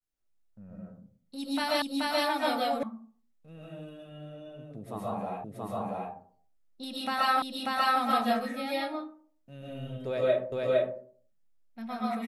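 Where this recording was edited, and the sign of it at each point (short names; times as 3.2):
1.82 repeat of the last 0.43 s
2.83 sound cut off
5.44 repeat of the last 0.68 s
7.42 repeat of the last 0.59 s
10.52 repeat of the last 0.46 s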